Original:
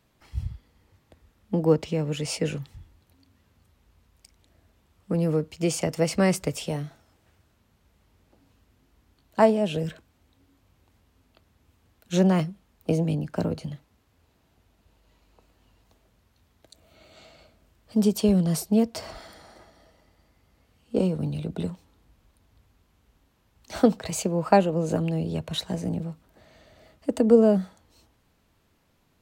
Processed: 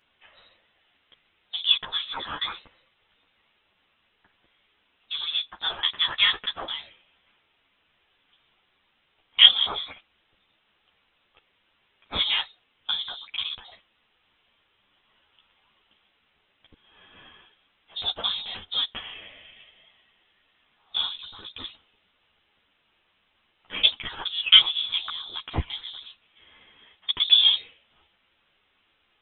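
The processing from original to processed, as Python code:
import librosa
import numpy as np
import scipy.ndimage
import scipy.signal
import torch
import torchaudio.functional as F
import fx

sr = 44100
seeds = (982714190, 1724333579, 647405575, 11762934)

p1 = scipy.signal.sosfilt(scipy.signal.butter(2, 680.0, 'highpass', fs=sr, output='sos'), x)
p2 = np.sign(p1) * np.maximum(np.abs(p1) - 10.0 ** (-36.5 / 20.0), 0.0)
p3 = p1 + (p2 * librosa.db_to_amplitude(-5.5))
p4 = fx.quant_dither(p3, sr, seeds[0], bits=12, dither='triangular')
p5 = fx.freq_invert(p4, sr, carrier_hz=3900)
p6 = fx.ensemble(p5, sr)
y = p6 * librosa.db_to_amplitude(7.0)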